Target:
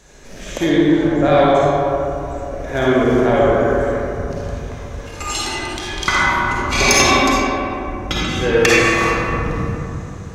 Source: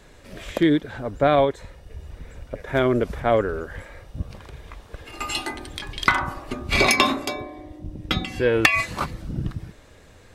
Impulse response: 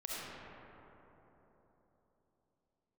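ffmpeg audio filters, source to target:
-filter_complex "[0:a]equalizer=f=6300:w=2.6:g=13[s0];[1:a]atrim=start_sample=2205,asetrate=57330,aresample=44100[s1];[s0][s1]afir=irnorm=-1:irlink=0,acontrast=83"

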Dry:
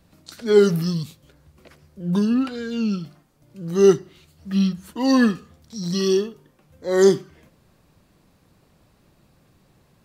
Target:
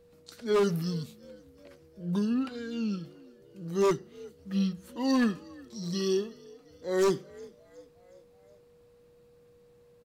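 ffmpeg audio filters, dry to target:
-filter_complex "[0:a]aeval=exprs='val(0)+0.00355*sin(2*PI*480*n/s)':c=same,asplit=5[s0][s1][s2][s3][s4];[s1]adelay=364,afreqshift=53,volume=0.0668[s5];[s2]adelay=728,afreqshift=106,volume=0.0359[s6];[s3]adelay=1092,afreqshift=159,volume=0.0195[s7];[s4]adelay=1456,afreqshift=212,volume=0.0105[s8];[s0][s5][s6][s7][s8]amix=inputs=5:normalize=0,aeval=exprs='0.316*(abs(mod(val(0)/0.316+3,4)-2)-1)':c=same,volume=0.376"

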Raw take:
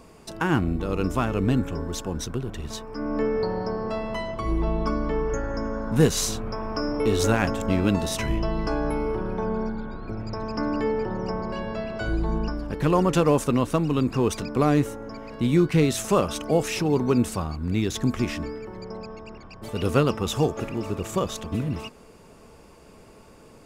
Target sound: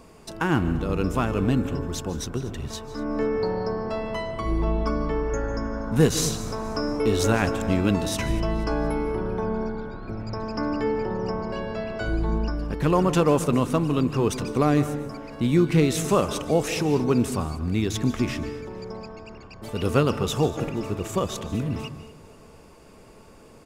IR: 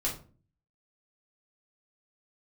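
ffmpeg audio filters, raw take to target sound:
-filter_complex "[0:a]aecho=1:1:239|478|717|956:0.112|0.0516|0.0237|0.0109,asplit=2[s0][s1];[1:a]atrim=start_sample=2205,adelay=144[s2];[s1][s2]afir=irnorm=-1:irlink=0,volume=0.106[s3];[s0][s3]amix=inputs=2:normalize=0"

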